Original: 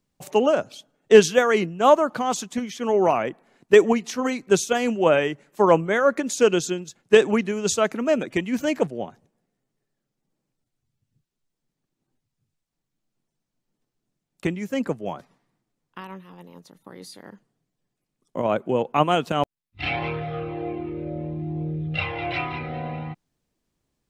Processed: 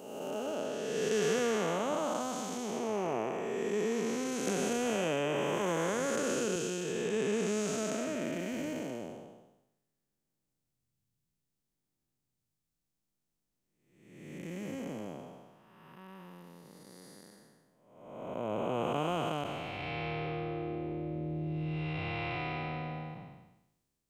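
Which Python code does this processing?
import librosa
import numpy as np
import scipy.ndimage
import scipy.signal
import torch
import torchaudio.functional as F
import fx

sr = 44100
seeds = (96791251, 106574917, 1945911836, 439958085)

y = fx.spec_blur(x, sr, span_ms=560.0)
y = fx.high_shelf(y, sr, hz=6400.0, db=10.5)
y = fx.band_squash(y, sr, depth_pct=100, at=(4.47, 6.56))
y = y * 10.0 ** (-5.5 / 20.0)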